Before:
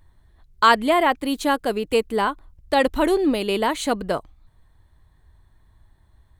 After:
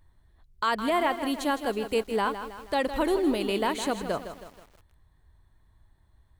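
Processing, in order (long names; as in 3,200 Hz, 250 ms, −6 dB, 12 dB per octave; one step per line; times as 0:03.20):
brickwall limiter −11 dBFS, peak gain reduction 7.5 dB
feedback echo at a low word length 160 ms, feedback 55%, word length 7 bits, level −10 dB
level −5.5 dB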